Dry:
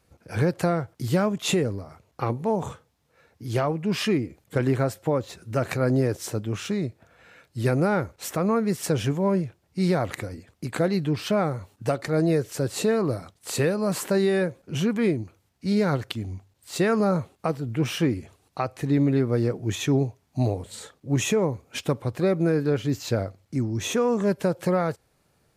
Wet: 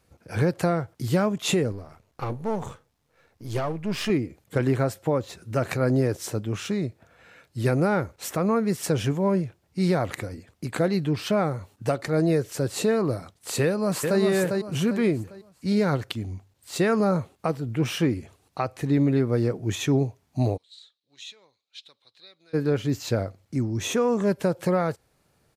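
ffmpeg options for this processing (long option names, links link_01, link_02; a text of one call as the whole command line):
ffmpeg -i in.wav -filter_complex "[0:a]asettb=1/sr,asplit=3[link_01][link_02][link_03];[link_01]atrim=end=1.724[link_04];[link_02]atrim=start=1.72:end=4.1,asetpts=PTS-STARTPTS,afade=type=in:duration=0.004:curve=qsin,afade=type=out:start_time=2.376:duration=0.004:curve=qsin,aeval=exprs='if(lt(val(0),0),0.447*val(0),val(0))':channel_layout=same[link_05];[link_03]atrim=start=4.096[link_06];[link_04][link_05]acrossfade=duration=0.004:curve1=hsin:curve2=qsin[link_07];[link_07][link_06]acrossfade=duration=0.004:curve1=qsin:curve2=hsin,asplit=2[link_08][link_09];[link_09]afade=type=in:start_time=13.63:duration=0.01,afade=type=out:start_time=14.21:duration=0.01,aecho=0:1:400|800|1200|1600:0.630957|0.220835|0.0772923|0.0270523[link_10];[link_08][link_10]amix=inputs=2:normalize=0,asplit=3[link_11][link_12][link_13];[link_11]afade=type=out:start_time=20.56:duration=0.02[link_14];[link_12]bandpass=frequency=3900:width_type=q:width=7.5,afade=type=in:start_time=20.56:duration=0.02,afade=type=out:start_time=22.53:duration=0.02[link_15];[link_13]afade=type=in:start_time=22.53:duration=0.02[link_16];[link_14][link_15][link_16]amix=inputs=3:normalize=0" out.wav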